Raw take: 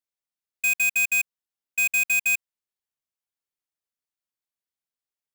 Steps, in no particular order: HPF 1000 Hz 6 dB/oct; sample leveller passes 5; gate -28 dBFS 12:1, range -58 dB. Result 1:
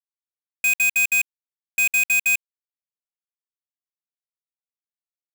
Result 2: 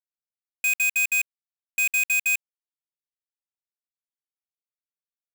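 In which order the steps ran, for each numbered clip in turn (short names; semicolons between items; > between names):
gate > HPF > sample leveller; gate > sample leveller > HPF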